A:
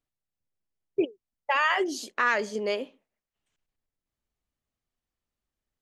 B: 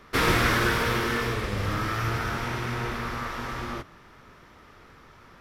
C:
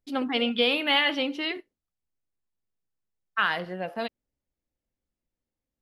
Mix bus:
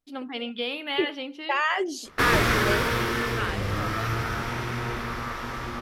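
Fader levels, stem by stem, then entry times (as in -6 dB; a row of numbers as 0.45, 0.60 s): -0.5, 0.0, -7.0 dB; 0.00, 2.05, 0.00 s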